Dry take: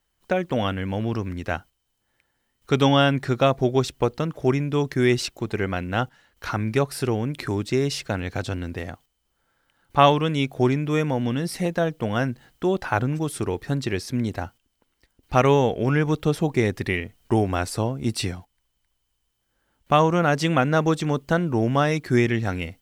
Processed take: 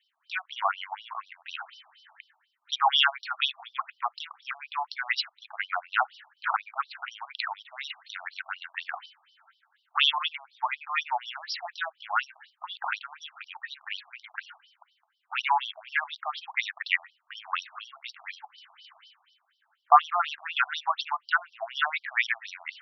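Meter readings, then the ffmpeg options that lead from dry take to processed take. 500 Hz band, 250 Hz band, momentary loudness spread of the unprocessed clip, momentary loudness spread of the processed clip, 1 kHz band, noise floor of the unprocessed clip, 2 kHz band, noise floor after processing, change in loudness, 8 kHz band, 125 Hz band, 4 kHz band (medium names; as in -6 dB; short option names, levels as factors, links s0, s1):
-21.0 dB, under -40 dB, 10 LU, 17 LU, -2.0 dB, -74 dBFS, +0.5 dB, -74 dBFS, -6.0 dB, -15.5 dB, under -40 dB, +2.0 dB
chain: -filter_complex "[0:a]bandreject=f=60:t=h:w=6,bandreject=f=120:t=h:w=6,bandreject=f=180:t=h:w=6,acrossover=split=220[s0][s1];[s1]adynamicsmooth=sensitivity=5:basefreq=7500[s2];[s0][s2]amix=inputs=2:normalize=0,lowshelf=f=340:g=-12,areverse,acompressor=mode=upward:threshold=0.0316:ratio=2.5,areverse,adynamicequalizer=threshold=0.00708:dfrequency=210:dqfactor=1.6:tfrequency=210:tqfactor=1.6:attack=5:release=100:ratio=0.375:range=2:mode=boostabove:tftype=bell,afftfilt=real='re*between(b*sr/1024,880*pow(4200/880,0.5+0.5*sin(2*PI*4.1*pts/sr))/1.41,880*pow(4200/880,0.5+0.5*sin(2*PI*4.1*pts/sr))*1.41)':imag='im*between(b*sr/1024,880*pow(4200/880,0.5+0.5*sin(2*PI*4.1*pts/sr))/1.41,880*pow(4200/880,0.5+0.5*sin(2*PI*4.1*pts/sr))*1.41)':win_size=1024:overlap=0.75,volume=2.11"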